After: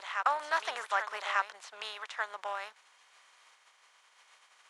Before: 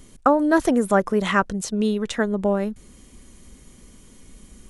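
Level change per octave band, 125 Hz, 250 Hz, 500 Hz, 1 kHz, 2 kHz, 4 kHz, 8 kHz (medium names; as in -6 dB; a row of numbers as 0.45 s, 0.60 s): under -40 dB, under -40 dB, -21.0 dB, -8.0 dB, -6.0 dB, -5.5 dB, -15.0 dB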